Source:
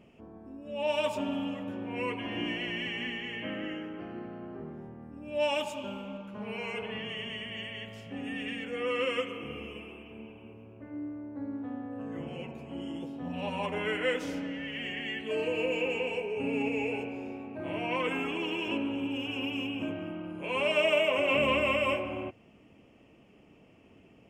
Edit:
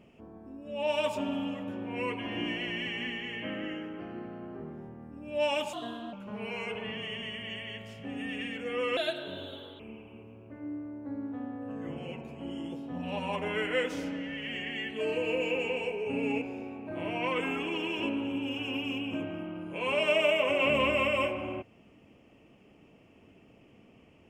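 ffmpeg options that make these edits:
ffmpeg -i in.wav -filter_complex "[0:a]asplit=6[link_01][link_02][link_03][link_04][link_05][link_06];[link_01]atrim=end=5.734[link_07];[link_02]atrim=start=5.73:end=6.2,asetpts=PTS-STARTPTS,asetrate=52038,aresample=44100,atrim=end_sample=17565,asetpts=PTS-STARTPTS[link_08];[link_03]atrim=start=6.196:end=9.044[link_09];[link_04]atrim=start=9.04:end=10.1,asetpts=PTS-STARTPTS,asetrate=56448,aresample=44100,atrim=end_sample=36520,asetpts=PTS-STARTPTS[link_10];[link_05]atrim=start=10.096:end=16.722[link_11];[link_06]atrim=start=17.098[link_12];[link_07][link_08]acrossfade=duration=0.004:curve1=hsin:curve2=hsin[link_13];[link_13][link_09]acrossfade=duration=0.004:curve1=hsin:curve2=hsin[link_14];[link_14][link_10]acrossfade=duration=0.004:curve1=hsin:curve2=hsin[link_15];[link_15][link_11]acrossfade=duration=0.004:curve1=hsin:curve2=hsin[link_16];[link_16][link_12]acrossfade=duration=0.004:curve1=hsin:curve2=hsin" out.wav

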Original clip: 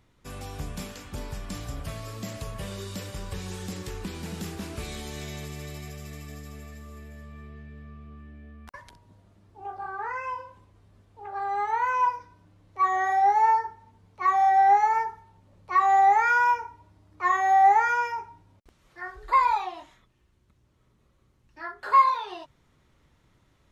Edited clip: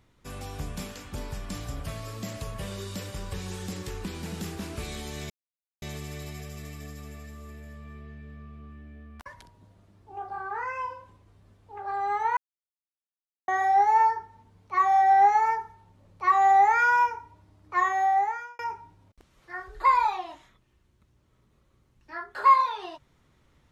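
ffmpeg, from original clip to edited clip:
ffmpeg -i in.wav -filter_complex "[0:a]asplit=5[link_01][link_02][link_03][link_04][link_05];[link_01]atrim=end=5.3,asetpts=PTS-STARTPTS,afade=type=out:start_time=5.296:duration=0.004:curve=hsin,apad=pad_dur=0.52[link_06];[link_02]atrim=start=5.3:end=11.85,asetpts=PTS-STARTPTS,afade=type=in:duration=0.004:curve=hsin,afade=type=out:start_time=6.546:duration=0.004:curve=hsin[link_07];[link_03]atrim=start=11.85:end=12.96,asetpts=PTS-STARTPTS,volume=0[link_08];[link_04]atrim=start=12.96:end=18.07,asetpts=PTS-STARTPTS,afade=type=in:duration=0.004:curve=hsin,afade=type=out:start_time=4.27:duration=0.84[link_09];[link_05]atrim=start=18.07,asetpts=PTS-STARTPTS,afade=type=in:duration=0.004:curve=hsin[link_10];[link_06][link_07][link_08][link_09][link_10]concat=n=5:v=0:a=1" out.wav

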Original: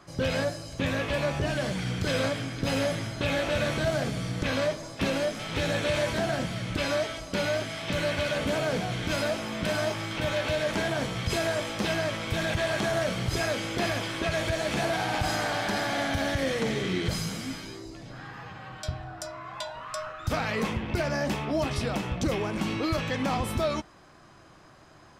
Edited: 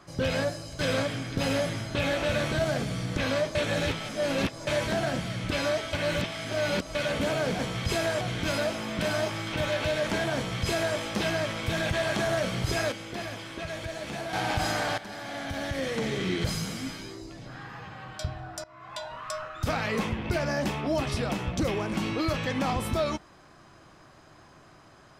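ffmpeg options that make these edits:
ffmpeg -i in.wav -filter_complex "[0:a]asplit=12[link_01][link_02][link_03][link_04][link_05][link_06][link_07][link_08][link_09][link_10][link_11][link_12];[link_01]atrim=end=0.792[link_13];[link_02]atrim=start=2.048:end=4.812[link_14];[link_03]atrim=start=4.808:end=5.932,asetpts=PTS-STARTPTS,areverse[link_15];[link_04]atrim=start=5.928:end=7.192[link_16];[link_05]atrim=start=7.188:end=8.212,asetpts=PTS-STARTPTS,areverse[link_17];[link_06]atrim=start=8.208:end=8.852[link_18];[link_07]atrim=start=10.998:end=11.622[link_19];[link_08]atrim=start=8.848:end=13.562[link_20];[link_09]atrim=start=13.558:end=14.972,asetpts=PTS-STARTPTS,volume=-7.5dB[link_21];[link_10]atrim=start=14.968:end=15.62,asetpts=PTS-STARTPTS,afade=type=out:start_time=0.648:duration=0.004:curve=hsin:silence=0.188365[link_22];[link_11]atrim=start=15.62:end=19.28,asetpts=PTS-STARTPTS,afade=type=in:duration=1.32:silence=0.188365,afade=type=out:start_time=3.656:duration=0.004:curve=hsin:silence=0.125893[link_23];[link_12]atrim=start=19.28,asetpts=PTS-STARTPTS,afade=type=in:duration=0.42:silence=0.125893[link_24];[link_13][link_14]acrossfade=duration=0.004:curve1=hsin:curve2=hsin[link_25];[link_25][link_15]acrossfade=duration=0.004:curve1=hsin:curve2=hsin[link_26];[link_26][link_16]acrossfade=duration=0.004:curve1=hsin:curve2=hsin[link_27];[link_27][link_17]acrossfade=duration=0.004:curve1=hsin:curve2=hsin[link_28];[link_28][link_18]acrossfade=duration=0.004:curve1=hsin:curve2=hsin[link_29];[link_29][link_19]acrossfade=duration=0.004:curve1=hsin:curve2=hsin[link_30];[link_30][link_20]acrossfade=duration=0.004:curve1=hsin:curve2=hsin[link_31];[link_31][link_21]acrossfade=duration=0.004:curve1=hsin:curve2=hsin[link_32];[link_22][link_23][link_24]concat=n=3:v=0:a=1[link_33];[link_32][link_33]acrossfade=duration=0.004:curve1=hsin:curve2=hsin" out.wav

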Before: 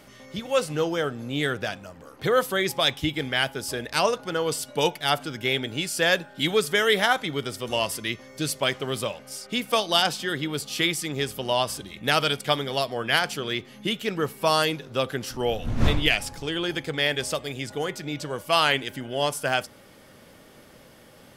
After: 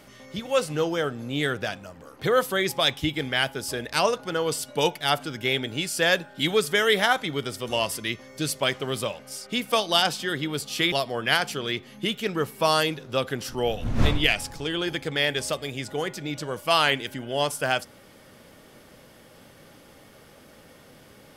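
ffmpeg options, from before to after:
ffmpeg -i in.wav -filter_complex "[0:a]asplit=2[link_01][link_02];[link_01]atrim=end=10.922[link_03];[link_02]atrim=start=12.738[link_04];[link_03][link_04]acrossfade=duration=0.004:curve1=hsin:curve2=hsin" out.wav

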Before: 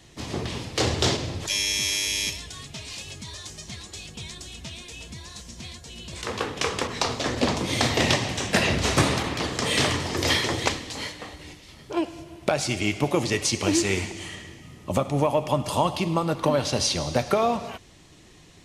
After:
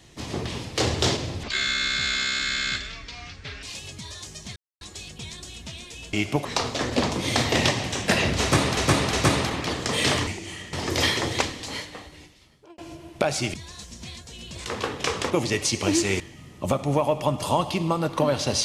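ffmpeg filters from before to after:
ffmpeg -i in.wav -filter_complex "[0:a]asplit=14[link_01][link_02][link_03][link_04][link_05][link_06][link_07][link_08][link_09][link_10][link_11][link_12][link_13][link_14];[link_01]atrim=end=1.434[link_15];[link_02]atrim=start=1.43:end=2.86,asetpts=PTS-STARTPTS,asetrate=28665,aresample=44100[link_16];[link_03]atrim=start=2.856:end=3.79,asetpts=PTS-STARTPTS,afade=type=out:start_time=0.93:duration=0.004:curve=hsin,apad=pad_dur=0.25[link_17];[link_04]atrim=start=3.79:end=5.112,asetpts=PTS-STARTPTS,afade=type=in:duration=0.004:curve=hsin[link_18];[link_05]atrim=start=12.808:end=13.132[link_19];[link_06]atrim=start=6.898:end=9.222[link_20];[link_07]atrim=start=8.858:end=9.222[link_21];[link_08]atrim=start=8.858:end=10.002[link_22];[link_09]atrim=start=13.998:end=14.462[link_23];[link_10]atrim=start=9.998:end=12.05,asetpts=PTS-STARTPTS,afade=type=out:start_time=1.082:duration=0.97[link_24];[link_11]atrim=start=12.05:end=12.812,asetpts=PTS-STARTPTS,afade=type=in:duration=0.004:curve=hsin[link_25];[link_12]atrim=start=5.108:end=6.902[link_26];[link_13]atrim=start=13.128:end=14.002[link_27];[link_14]atrim=start=14.458[link_28];[link_15][link_16]acrossfade=duration=0.004:curve1=hsin:curve2=hsin[link_29];[link_17][link_18]concat=n=2:v=0:a=1[link_30];[link_29][link_30]acrossfade=duration=0.004:curve1=hsin:curve2=hsin[link_31];[link_31][link_19]acrossfade=duration=0.004:curve1=hsin:curve2=hsin[link_32];[link_32][link_20]acrossfade=duration=0.004:curve1=hsin:curve2=hsin[link_33];[link_33][link_21]acrossfade=duration=0.004:curve1=hsin:curve2=hsin[link_34];[link_34][link_22]acrossfade=duration=0.004:curve1=hsin:curve2=hsin[link_35];[link_35][link_23]acrossfade=duration=0.004:curve1=hsin:curve2=hsin[link_36];[link_24][link_25]concat=n=2:v=0:a=1[link_37];[link_36][link_37]acrossfade=duration=0.004:curve1=hsin:curve2=hsin[link_38];[link_38][link_26]acrossfade=duration=0.004:curve1=hsin:curve2=hsin[link_39];[link_39][link_27]acrossfade=duration=0.004:curve1=hsin:curve2=hsin[link_40];[link_40][link_28]acrossfade=duration=0.004:curve1=hsin:curve2=hsin" out.wav

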